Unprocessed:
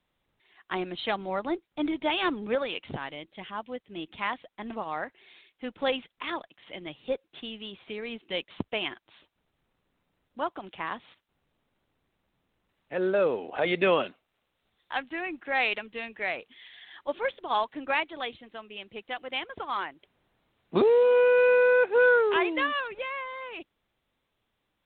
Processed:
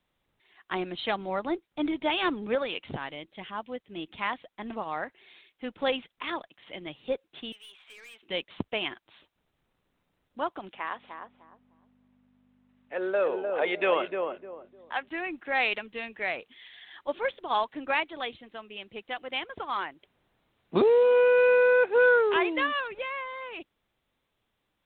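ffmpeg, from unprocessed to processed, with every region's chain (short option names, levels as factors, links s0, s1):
-filter_complex "[0:a]asettb=1/sr,asplit=3[s0][s1][s2];[s0]atrim=end=7.524[s3];[s1]atrim=start=7.52:end=8.23,asetpts=PTS-STARTPTS,afade=t=in:d=0.004:c=qsin,afade=t=out:st=0.706:d=0.004:c=qsin,highpass=1100,aeval=exprs='(tanh(200*val(0)+0.1)-tanh(0.1))/200':c=same[s4];[s2]atrim=start=8.226[s5];[s3][s4]acrossfade=d=0.004:c1=hsin:c2=qsin[s6];[s6][s5]acrossfade=d=0.004:c1=qsin:c2=hsin,asettb=1/sr,asplit=3[s7][s8][s9];[s7]atrim=end=10.734[s10];[s8]atrim=start=10.73:end=15.08,asetpts=PTS-STARTPTS,afade=t=in:d=0.004:c=qsin,afade=t=out:st=4.346:d=0.004:c=qsin,aeval=exprs='val(0)+0.00794*(sin(2*PI*50*n/s)+sin(2*PI*2*50*n/s)/2+sin(2*PI*3*50*n/s)/3+sin(2*PI*4*50*n/s)/4+sin(2*PI*5*50*n/s)/5)':c=same,highpass=430,lowpass=3100,asplit=2[s11][s12];[s12]adelay=303,lowpass=f=810:p=1,volume=0.668,asplit=2[s13][s14];[s14]adelay=303,lowpass=f=810:p=1,volume=0.31,asplit=2[s15][s16];[s16]adelay=303,lowpass=f=810:p=1,volume=0.31,asplit=2[s17][s18];[s18]adelay=303,lowpass=f=810:p=1,volume=0.31[s19];[s11][s13][s15][s17][s19]amix=inputs=5:normalize=0,atrim=end_sample=191835[s20];[s9]atrim=start=15.076[s21];[s10][s20]acrossfade=d=0.004:c1=hsin:c2=qsin[s22];[s22][s21]acrossfade=d=0.004:c1=qsin:c2=hsin"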